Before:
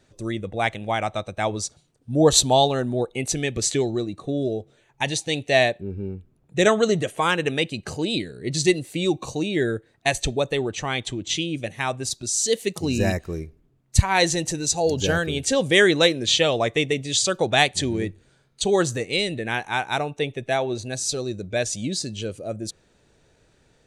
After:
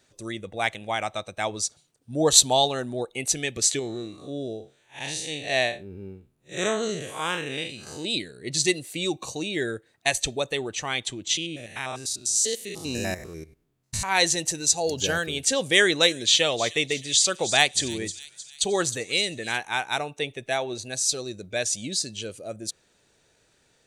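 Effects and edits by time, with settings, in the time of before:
3.79–8.05 time blur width 0.12 s
11.37–14.09 stepped spectrum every 0.1 s
15.77–19.58 thin delay 0.31 s, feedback 51%, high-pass 4800 Hz, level -9 dB
whole clip: tilt +2 dB/oct; gain -3 dB

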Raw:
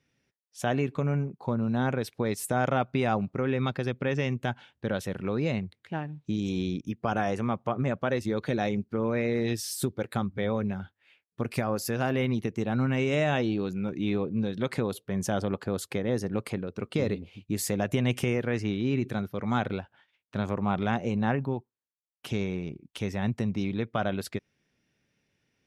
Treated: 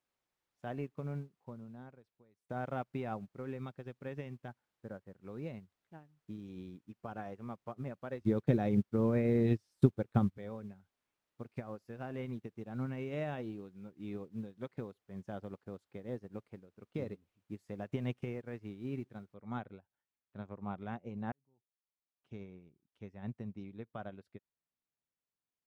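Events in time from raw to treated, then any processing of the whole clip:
1.21–2.49 fade out, to -15 dB
4.48–5.14 LPF 1900 Hz 24 dB/oct
8.21–10.38 low shelf 380 Hz +8.5 dB
11.42–12.32 block floating point 7-bit
19.34 noise floor step -50 dB -63 dB
21.32–22.43 fade in
whole clip: LPF 1500 Hz 6 dB/oct; upward expander 2.5:1, over -38 dBFS

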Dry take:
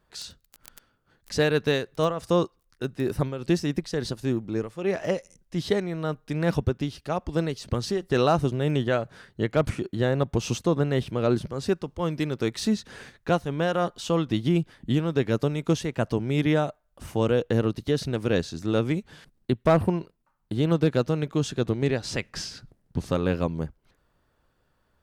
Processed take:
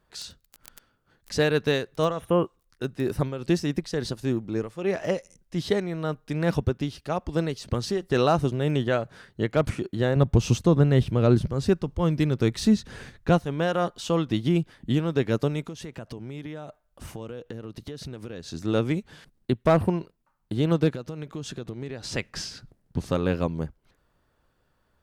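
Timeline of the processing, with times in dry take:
2.14–2.54 spectral repair 3300–8800 Hz
10.16–13.39 low shelf 170 Hz +12 dB
15.64–18.53 compressor 8:1, threshold -33 dBFS
20.95–22.12 compressor 5:1, threshold -31 dBFS

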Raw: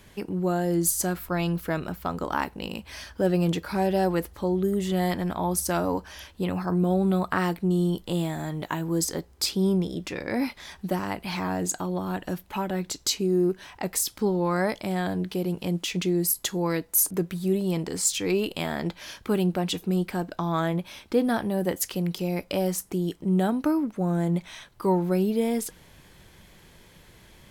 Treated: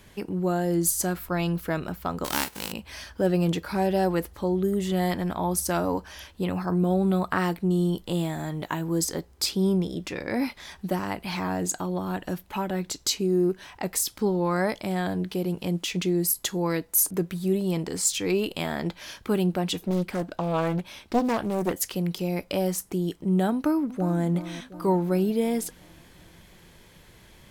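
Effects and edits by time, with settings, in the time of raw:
2.24–2.71 spectral whitening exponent 0.3
19.84–21.73 Doppler distortion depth 0.62 ms
23.53–24.24 echo throw 0.36 s, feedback 60%, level -13 dB

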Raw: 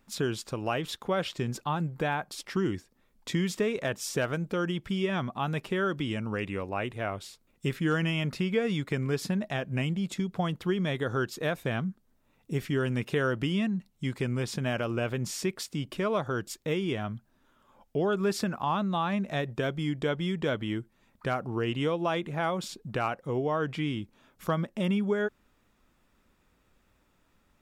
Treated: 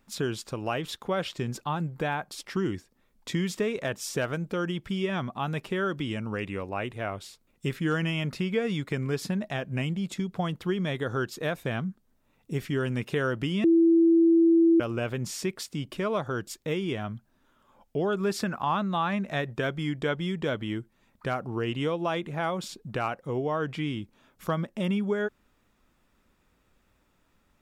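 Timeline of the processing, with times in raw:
13.64–14.8 bleep 332 Hz -16 dBFS
18.31–20.14 dynamic EQ 1600 Hz, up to +4 dB, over -44 dBFS, Q 0.99

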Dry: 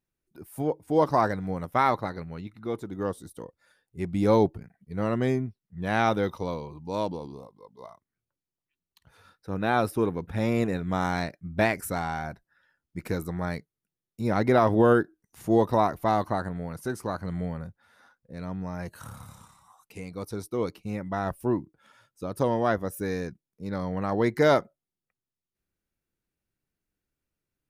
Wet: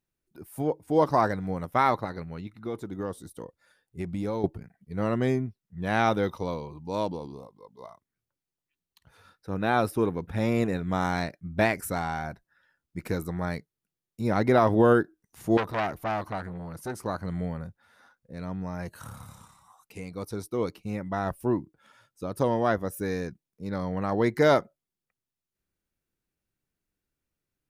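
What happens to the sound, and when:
2.04–4.44 compressor, threshold -27 dBFS
15.57–17.06 core saturation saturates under 1800 Hz

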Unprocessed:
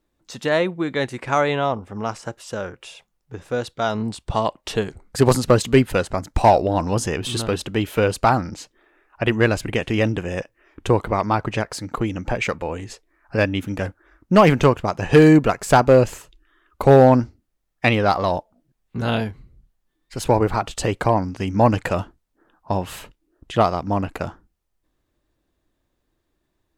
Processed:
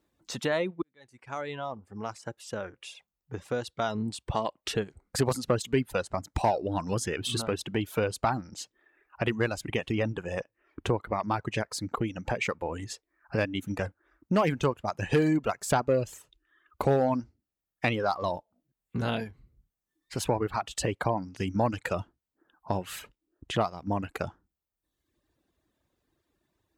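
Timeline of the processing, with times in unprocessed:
0.82–3.92 fade in
9.92–11.3 high shelf 3600 Hz -6.5 dB
whole clip: reverb removal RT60 1 s; HPF 57 Hz; compressor 2:1, threshold -31 dBFS

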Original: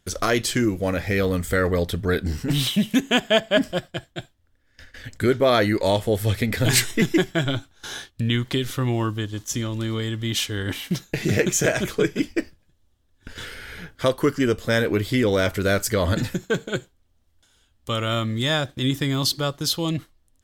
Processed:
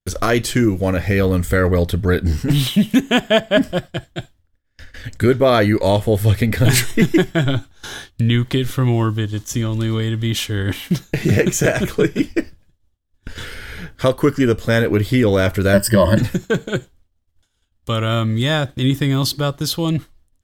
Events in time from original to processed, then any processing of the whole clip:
15.73–16.18 ripple EQ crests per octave 1.3, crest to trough 17 dB
whole clip: low shelf 160 Hz +6 dB; expander -48 dBFS; dynamic EQ 5300 Hz, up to -4 dB, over -38 dBFS, Q 0.73; gain +4 dB

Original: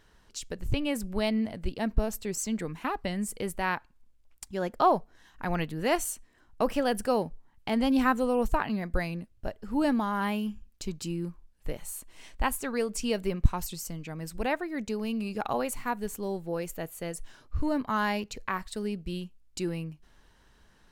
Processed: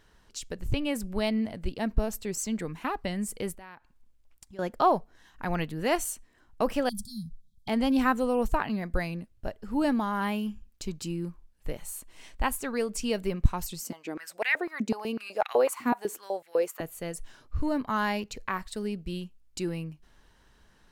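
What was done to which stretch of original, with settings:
3.53–4.59 compressor 3:1, threshold -49 dBFS
6.89–7.68 brick-wall FIR band-stop 230–3200 Hz
13.8–16.81 stepped high-pass 8 Hz 250–2000 Hz

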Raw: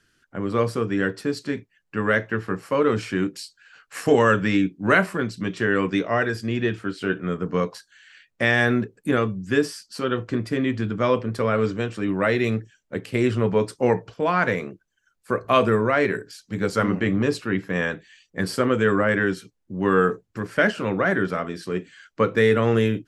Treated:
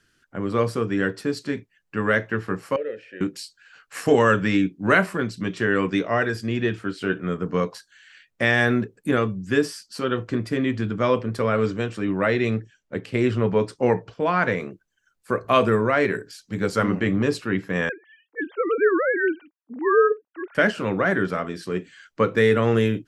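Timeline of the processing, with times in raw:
2.76–3.21 vowel filter e
12.02–14.6 air absorption 52 m
17.89–20.55 sine-wave speech

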